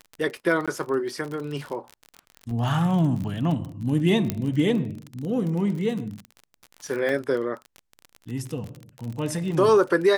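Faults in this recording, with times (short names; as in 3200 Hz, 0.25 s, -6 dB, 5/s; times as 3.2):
crackle 40/s -30 dBFS
0.66–0.68 gap 16 ms
2.51 gap 2.4 ms
4.3 pop -10 dBFS
7.09 gap 2.3 ms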